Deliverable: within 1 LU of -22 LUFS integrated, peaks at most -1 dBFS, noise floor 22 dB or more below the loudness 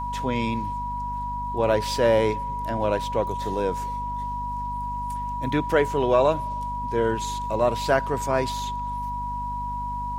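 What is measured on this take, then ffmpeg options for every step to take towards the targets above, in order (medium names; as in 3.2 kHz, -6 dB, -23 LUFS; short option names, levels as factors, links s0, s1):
hum 50 Hz; highest harmonic 250 Hz; hum level -32 dBFS; steady tone 970 Hz; tone level -28 dBFS; loudness -25.5 LUFS; peak level -7.0 dBFS; loudness target -22.0 LUFS
-> -af "bandreject=f=50:t=h:w=4,bandreject=f=100:t=h:w=4,bandreject=f=150:t=h:w=4,bandreject=f=200:t=h:w=4,bandreject=f=250:t=h:w=4"
-af "bandreject=f=970:w=30"
-af "volume=1.5"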